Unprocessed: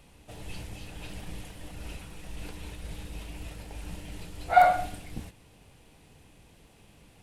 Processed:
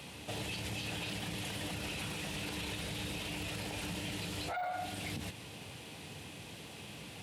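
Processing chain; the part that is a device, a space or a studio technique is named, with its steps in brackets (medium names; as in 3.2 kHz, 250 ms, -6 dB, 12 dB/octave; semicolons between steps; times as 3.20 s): broadcast voice chain (high-pass 89 Hz 24 dB/octave; de-esser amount 95%; compression 4:1, threshold -41 dBFS, peak gain reduction 21 dB; peaking EQ 3.5 kHz +6 dB 1.5 oct; peak limiter -39 dBFS, peak gain reduction 11.5 dB); trim +8.5 dB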